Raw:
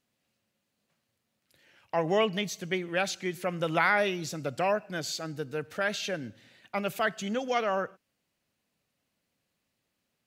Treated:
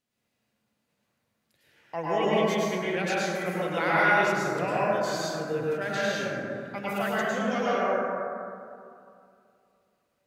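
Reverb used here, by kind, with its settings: plate-style reverb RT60 2.5 s, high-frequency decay 0.3×, pre-delay 90 ms, DRR -8 dB; trim -5.5 dB

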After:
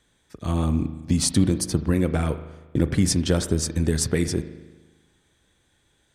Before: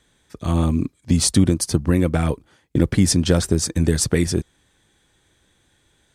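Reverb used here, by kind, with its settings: spring tank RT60 1.2 s, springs 38 ms, chirp 45 ms, DRR 10.5 dB; trim -4 dB

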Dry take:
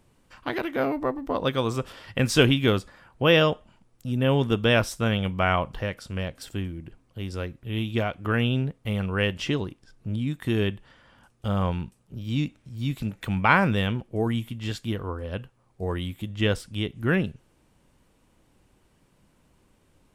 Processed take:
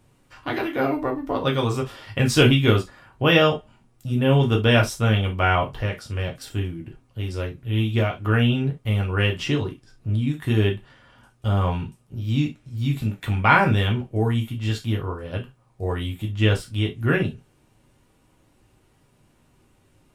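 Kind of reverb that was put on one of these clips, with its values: gated-style reverb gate 90 ms falling, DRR 0 dB

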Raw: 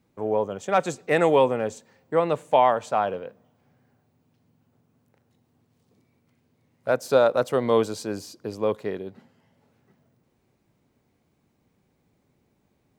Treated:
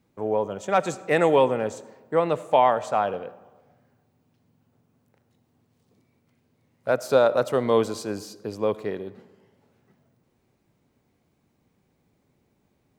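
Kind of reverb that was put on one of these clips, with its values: algorithmic reverb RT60 1.3 s, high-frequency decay 0.5×, pre-delay 35 ms, DRR 17.5 dB

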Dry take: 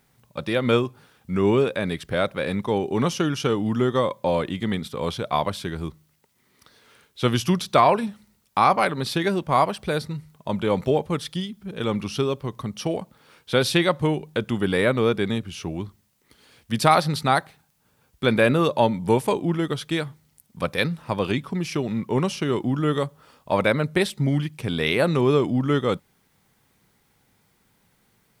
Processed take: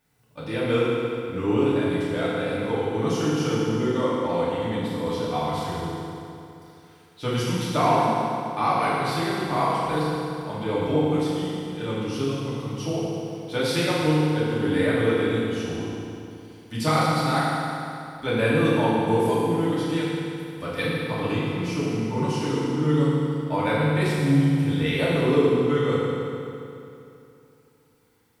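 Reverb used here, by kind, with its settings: FDN reverb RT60 2.8 s, high-frequency decay 0.8×, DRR -9.5 dB; trim -11.5 dB

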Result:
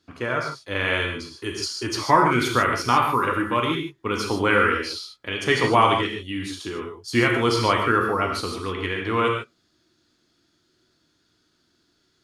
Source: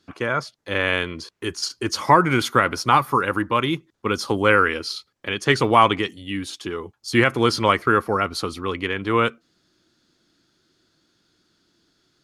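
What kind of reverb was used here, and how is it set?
gated-style reverb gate 170 ms flat, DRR 0.5 dB; trim -4 dB

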